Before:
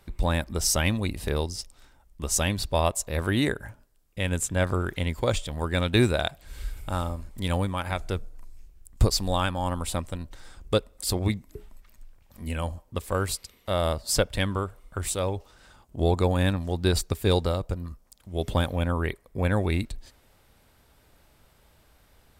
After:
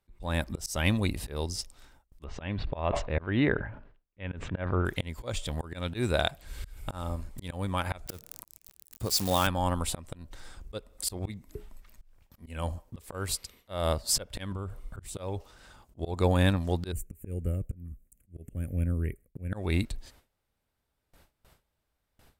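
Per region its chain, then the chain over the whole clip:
0:02.24–0:04.85: low-pass filter 2,800 Hz 24 dB per octave + level that may fall only so fast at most 81 dB per second
0:08.06–0:09.47: spike at every zero crossing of −23 dBFS + high-pass filter 95 Hz
0:14.52–0:15.17: low-shelf EQ 270 Hz +9 dB + volume swells 137 ms + downward compressor 10 to 1, threshold −29 dBFS
0:16.92–0:19.53: Butterworth band-reject 3,800 Hz, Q 1.3 + parametric band 1,300 Hz −15 dB 2.8 octaves + phaser with its sweep stopped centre 2,200 Hz, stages 4
whole clip: noise gate with hold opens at −47 dBFS; volume swells 238 ms

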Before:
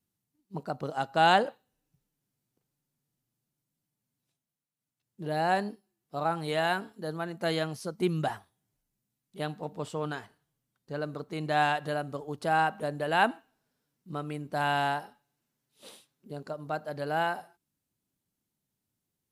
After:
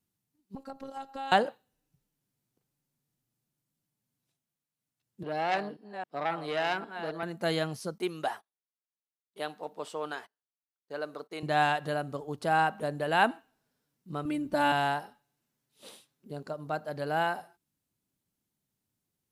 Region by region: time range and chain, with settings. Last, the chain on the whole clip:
0:00.55–0:01.32: downward compressor 4 to 1, threshold −35 dBFS + phases set to zero 271 Hz
0:05.23–0:07.23: delay that plays each chunk backwards 269 ms, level −11 dB + three-way crossover with the lows and the highs turned down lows −13 dB, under 200 Hz, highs −13 dB, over 4,700 Hz + saturating transformer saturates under 1,900 Hz
0:07.98–0:11.43: noise gate −51 dBFS, range −24 dB + high-pass filter 400 Hz + notch filter 7,300 Hz, Q 15
0:14.25–0:14.72: low-shelf EQ 190 Hz +11.5 dB + comb filter 3.4 ms, depth 85%
whole clip: no processing

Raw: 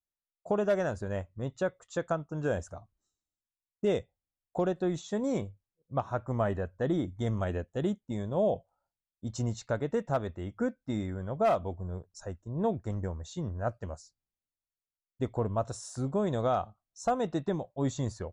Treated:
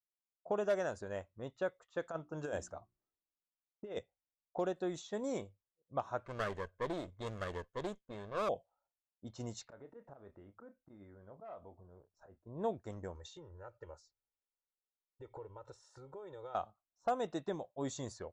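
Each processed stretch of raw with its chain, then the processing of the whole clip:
0:02.03–0:03.99: mains-hum notches 60/120/180/240/300/360 Hz + compressor whose output falls as the input rises −31 dBFS, ratio −0.5
0:06.25–0:08.49: lower of the sound and its delayed copy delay 0.62 ms + comb filter 1.9 ms, depth 38% + highs frequency-modulated by the lows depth 0.14 ms
0:09.63–0:12.46: volume swells 163 ms + downward compressor 4 to 1, threshold −43 dBFS + double-tracking delay 30 ms −10 dB
0:13.15–0:16.55: high-shelf EQ 3,100 Hz +11.5 dB + downward compressor 20 to 1, threshold −39 dBFS + comb filter 2.2 ms, depth 98%
whole clip: high-shelf EQ 7,300 Hz −6 dB; low-pass that shuts in the quiet parts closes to 960 Hz, open at −27 dBFS; bass and treble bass −10 dB, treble +6 dB; level −5 dB

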